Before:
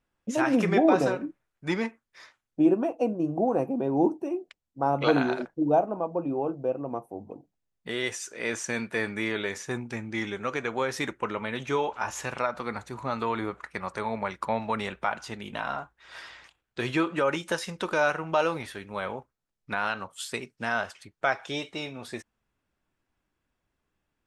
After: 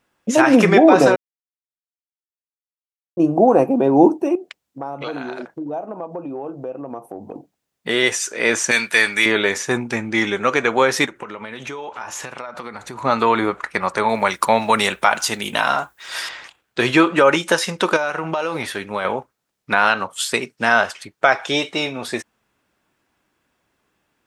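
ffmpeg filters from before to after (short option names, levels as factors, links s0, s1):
-filter_complex "[0:a]asettb=1/sr,asplit=3[s0][s1][s2];[s0]atrim=end=4.354[s3];[s1]atrim=start=4.35:end=7.35,asetpts=PTS-STARTPTS,afade=t=in:d=0.004:c=qsin,afade=t=out:st=2.996:d=0.004:c=qsin,acompressor=threshold=0.01:ratio=4:attack=3.2:release=140:knee=1:detection=peak[s4];[s2]atrim=start=7.346[s5];[s3][s4]acrossfade=d=0.004:c1=hsin:c2=qsin[s6];[s6][s5]acrossfade=d=0.004:c1=qsin:c2=hsin,asettb=1/sr,asplit=3[s7][s8][s9];[s7]atrim=end=8.714[s10];[s8]atrim=start=8.71:end=9.26,asetpts=PTS-STARTPTS,afade=t=in:d=0.004:c=qsin,afade=t=out:st=0.546:d=0.004:c=qsin,tiltshelf=f=1400:g=-9.5[s11];[s9]atrim=start=9.256[s12];[s10][s11]acrossfade=d=0.004:c1=hsin:c2=qsin[s13];[s13][s12]acrossfade=d=0.004:c1=qsin:c2=hsin,asplit=3[s14][s15][s16];[s14]afade=t=out:st=11.05:d=0.02[s17];[s15]acompressor=threshold=0.0112:ratio=16:attack=3.2:release=140:knee=1:detection=peak,afade=t=in:st=11.05:d=0.02,afade=t=out:st=13.03:d=0.02[s18];[s16]afade=t=in:st=13.03:d=0.02[s19];[s17][s18][s19]amix=inputs=3:normalize=0,asettb=1/sr,asplit=3[s20][s21][s22];[s20]atrim=end=14.094[s23];[s21]atrim=start=14.09:end=16.29,asetpts=PTS-STARTPTS,afade=t=in:d=0.004:c=qsin,afade=t=out:st=2.196:d=0.004:c=qsin,aemphasis=mode=production:type=75fm[s24];[s22]atrim=start=16.286[s25];[s23][s24]acrossfade=d=0.004:c1=hsin:c2=qsin[s26];[s26][s25]acrossfade=d=0.004:c1=qsin:c2=hsin,asettb=1/sr,asplit=3[s27][s28][s29];[s27]atrim=end=17.964[s30];[s28]atrim=start=17.96:end=19.05,asetpts=PTS-STARTPTS,afade=t=in:d=0.004:c=qsin,afade=t=out:st=1.086:d=0.004:c=qsin,acompressor=threshold=0.0316:ratio=12:attack=3.2:release=140:knee=1:detection=peak[s31];[s29]atrim=start=19.046[s32];[s30][s31]acrossfade=d=0.004:c1=hsin:c2=qsin[s33];[s33][s32]acrossfade=d=0.004:c1=qsin:c2=hsin,asplit=3[s34][s35][s36];[s34]atrim=end=1.16,asetpts=PTS-STARTPTS,afade=t=out:st=1.156:d=0.004:c=hsin[s37];[s35]atrim=start=1.16:end=3.17,asetpts=PTS-STARTPTS,volume=0[s38];[s36]atrim=start=3.17,asetpts=PTS-STARTPTS,afade=t=in:d=0.004:c=hsin[s39];[s37][s38][s39]concat=n=3:v=0:a=1,highpass=f=230:p=1,alimiter=level_in=5.31:limit=0.891:release=50:level=0:latency=1,volume=0.891"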